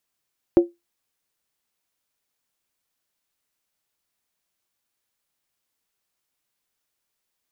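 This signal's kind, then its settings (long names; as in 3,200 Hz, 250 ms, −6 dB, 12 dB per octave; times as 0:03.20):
struck skin, lowest mode 345 Hz, decay 0.19 s, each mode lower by 12 dB, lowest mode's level −6 dB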